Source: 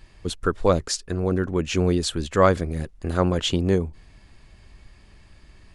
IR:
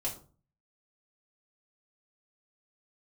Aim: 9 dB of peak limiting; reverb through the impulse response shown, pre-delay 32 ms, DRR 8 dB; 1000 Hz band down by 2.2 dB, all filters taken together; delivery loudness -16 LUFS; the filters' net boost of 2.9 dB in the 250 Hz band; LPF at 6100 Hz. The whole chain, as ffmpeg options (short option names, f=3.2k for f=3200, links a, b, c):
-filter_complex "[0:a]lowpass=6.1k,equalizer=f=250:t=o:g=4.5,equalizer=f=1k:t=o:g=-3,alimiter=limit=-12.5dB:level=0:latency=1,asplit=2[a][b];[1:a]atrim=start_sample=2205,adelay=32[c];[b][c]afir=irnorm=-1:irlink=0,volume=-10.5dB[d];[a][d]amix=inputs=2:normalize=0,volume=8dB"